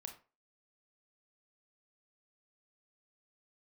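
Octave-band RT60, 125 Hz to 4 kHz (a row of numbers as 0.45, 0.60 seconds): 0.30, 0.30, 0.35, 0.35, 0.30, 0.25 seconds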